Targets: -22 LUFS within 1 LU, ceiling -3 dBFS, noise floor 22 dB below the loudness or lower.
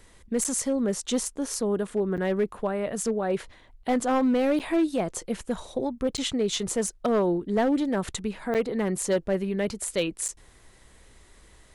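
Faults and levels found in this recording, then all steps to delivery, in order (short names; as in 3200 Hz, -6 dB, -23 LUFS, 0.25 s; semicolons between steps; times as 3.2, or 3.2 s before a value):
clipped 1.3%; flat tops at -18.0 dBFS; dropouts 6; longest dropout 8.0 ms; loudness -27.0 LUFS; peak -18.0 dBFS; loudness target -22.0 LUFS
-> clip repair -18 dBFS; interpolate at 0.44/2.17/4.59/6.17/8.54/10.28, 8 ms; gain +5 dB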